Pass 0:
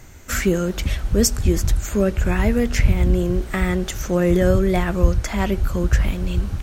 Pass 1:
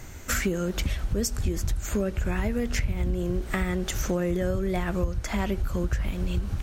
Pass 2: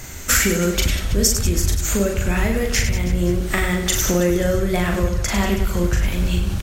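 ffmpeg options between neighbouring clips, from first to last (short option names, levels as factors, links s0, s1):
-af "acompressor=threshold=0.0562:ratio=6,volume=1.19"
-filter_complex "[0:a]highshelf=f=2400:g=8,asplit=2[s0][s1];[s1]aecho=0:1:40|100|190|325|527.5:0.631|0.398|0.251|0.158|0.1[s2];[s0][s2]amix=inputs=2:normalize=0,volume=1.78"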